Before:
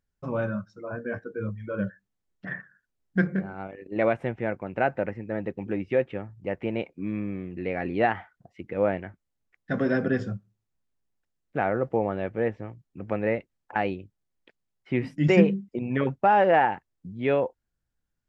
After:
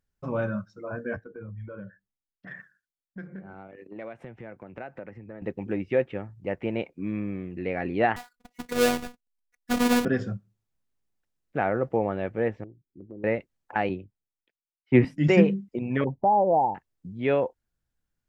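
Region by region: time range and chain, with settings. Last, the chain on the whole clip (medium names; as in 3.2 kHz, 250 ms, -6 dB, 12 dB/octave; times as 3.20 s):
1.16–5.42 s: compression, threshold -37 dBFS + three bands expanded up and down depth 100%
8.16–10.05 s: square wave that keeps the level + gate -52 dBFS, range -7 dB + robot voice 244 Hz
12.64–13.24 s: four-pole ladder low-pass 410 Hz, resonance 60% + compression 3:1, threshold -38 dBFS
13.89–15.05 s: low-pass 2.2 kHz 6 dB/octave + three bands expanded up and down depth 100%
16.04–16.75 s: steep low-pass 980 Hz 72 dB/octave + dynamic bell 370 Hz, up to -3 dB, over -32 dBFS, Q 0.83 + upward compressor, threshold -33 dBFS
whole clip: none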